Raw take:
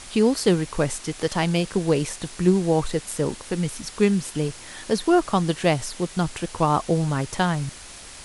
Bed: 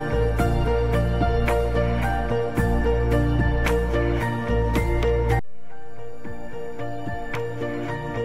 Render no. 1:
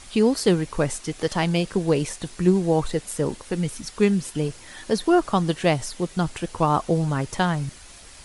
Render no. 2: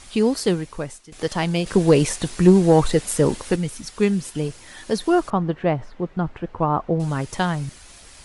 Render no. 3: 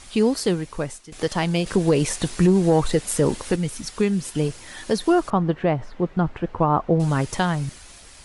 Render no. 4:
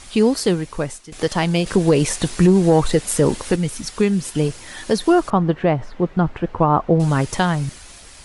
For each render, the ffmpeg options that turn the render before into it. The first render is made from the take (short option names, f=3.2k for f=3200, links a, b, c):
-af "afftdn=nr=6:nf=-42"
-filter_complex "[0:a]asettb=1/sr,asplit=3[a][b][c];[a]atrim=end=1.664[d];[b]atrim=start=1.66:end=3.56,asetpts=PTS-STARTPTS,afade=t=in:d=0.004:c=qsin,afade=t=out:st=1.896:d=0.004:c=qsin,acontrast=77[e];[c]atrim=start=3.556[f];[d][e]acrossfade=d=0.004:c1=hsin:c2=qsin[g];[g][f]acrossfade=d=0.004:c1=qsin:c2=hsin,asettb=1/sr,asplit=3[h][i][j];[h]atrim=end=5.304[k];[i]atrim=start=5.3:end=7,asetpts=PTS-STARTPTS,afade=t=in:d=0.004:c=qsin,afade=t=out:st=1.696:d=0.004:c=qsin,lowpass=1.6k[l];[j]atrim=start=6.996[m];[k][l]acrossfade=d=0.004:c1=hsin:c2=qsin[n];[n][m]acrossfade=d=0.004:c1=qsin:c2=hsin,asplit=2[o][p];[o]atrim=end=1.12,asetpts=PTS-STARTPTS,afade=t=out:st=0.38:d=0.74:silence=0.11885[q];[p]atrim=start=1.12,asetpts=PTS-STARTPTS,afade=t=in:d=0.004:c=hsin:silence=0.11885[r];[q][r]concat=n=2:v=0:a=1"
-af "dynaudnorm=f=160:g=9:m=3.5dB,alimiter=limit=-9dB:level=0:latency=1:release=284"
-af "volume=3.5dB"